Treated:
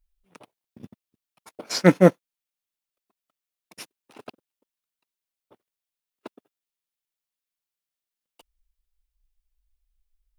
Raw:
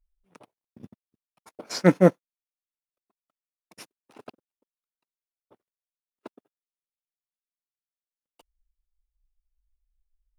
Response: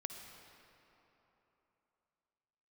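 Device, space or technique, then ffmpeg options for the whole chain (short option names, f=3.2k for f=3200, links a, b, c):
presence and air boost: -af "equalizer=f=3.1k:t=o:w=1.4:g=4,highshelf=f=9.1k:g=5.5,volume=2dB"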